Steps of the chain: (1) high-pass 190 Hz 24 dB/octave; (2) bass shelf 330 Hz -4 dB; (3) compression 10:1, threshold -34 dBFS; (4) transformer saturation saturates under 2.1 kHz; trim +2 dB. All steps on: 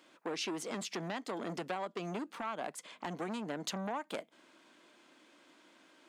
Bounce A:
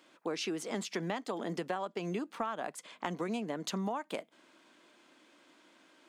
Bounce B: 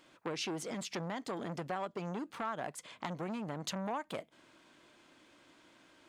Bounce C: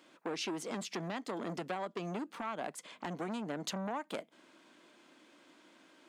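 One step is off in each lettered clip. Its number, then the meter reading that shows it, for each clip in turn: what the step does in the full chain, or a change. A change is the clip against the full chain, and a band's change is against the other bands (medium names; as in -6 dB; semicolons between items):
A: 4, crest factor change +2.0 dB; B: 1, 125 Hz band +3.5 dB; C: 2, 125 Hz band +1.5 dB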